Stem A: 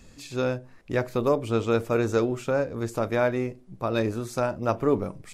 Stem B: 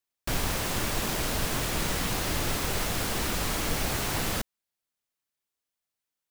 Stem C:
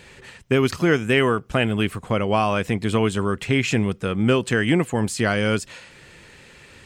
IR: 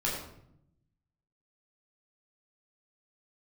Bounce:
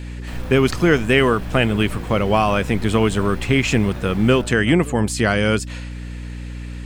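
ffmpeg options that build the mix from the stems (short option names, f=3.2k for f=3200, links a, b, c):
-filter_complex "[0:a]volume=-15.5dB[a];[1:a]acrossover=split=3500[b][c];[c]acompressor=threshold=-47dB:ratio=4:attack=1:release=60[d];[b][d]amix=inputs=2:normalize=0,acrusher=bits=4:mode=log:mix=0:aa=0.000001,volume=-12dB,asplit=2[e][f];[f]volume=-5dB[g];[2:a]aeval=exprs='val(0)+0.0251*(sin(2*PI*60*n/s)+sin(2*PI*2*60*n/s)/2+sin(2*PI*3*60*n/s)/3+sin(2*PI*4*60*n/s)/4+sin(2*PI*5*60*n/s)/5)':c=same,volume=3dB[h];[3:a]atrim=start_sample=2205[i];[g][i]afir=irnorm=-1:irlink=0[j];[a][e][h][j]amix=inputs=4:normalize=0"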